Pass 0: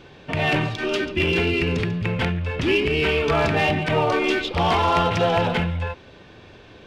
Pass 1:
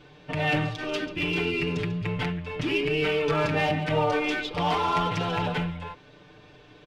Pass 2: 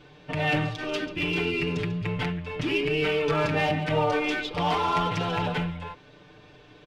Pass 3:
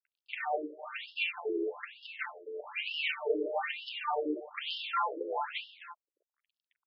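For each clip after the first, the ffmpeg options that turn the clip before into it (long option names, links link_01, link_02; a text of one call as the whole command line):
ffmpeg -i in.wav -af "aecho=1:1:6.7:0.87,volume=-8dB" out.wav
ffmpeg -i in.wav -af anull out.wav
ffmpeg -i in.wav -af "aeval=exprs='sgn(val(0))*max(abs(val(0))-0.00708,0)':channel_layout=same,afftfilt=real='re*between(b*sr/1024,390*pow(3900/390,0.5+0.5*sin(2*PI*1.1*pts/sr))/1.41,390*pow(3900/390,0.5+0.5*sin(2*PI*1.1*pts/sr))*1.41)':imag='im*between(b*sr/1024,390*pow(3900/390,0.5+0.5*sin(2*PI*1.1*pts/sr))/1.41,390*pow(3900/390,0.5+0.5*sin(2*PI*1.1*pts/sr))*1.41)':win_size=1024:overlap=0.75" out.wav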